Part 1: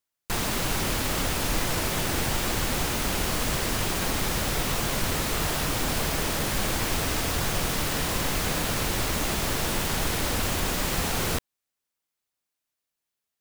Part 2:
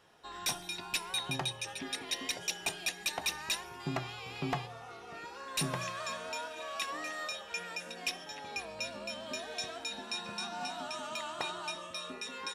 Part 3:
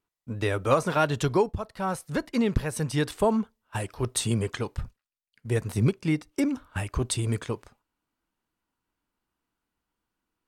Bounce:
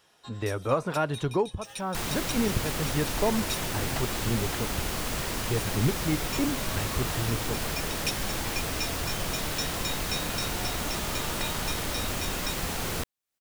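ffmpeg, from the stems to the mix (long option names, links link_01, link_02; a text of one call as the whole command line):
ffmpeg -i stem1.wav -i stem2.wav -i stem3.wav -filter_complex "[0:a]acompressor=mode=upward:threshold=-33dB:ratio=2.5,adelay=1650,volume=-4.5dB[link_01];[1:a]highshelf=frequency=3000:gain=10.5,volume=-2.5dB[link_02];[2:a]deesser=0.65,highshelf=frequency=3400:gain=-9.5,volume=-3dB,asplit=2[link_03][link_04];[link_04]apad=whole_len=553059[link_05];[link_02][link_05]sidechaincompress=threshold=-43dB:ratio=6:attack=16:release=143[link_06];[link_01][link_06][link_03]amix=inputs=3:normalize=0" out.wav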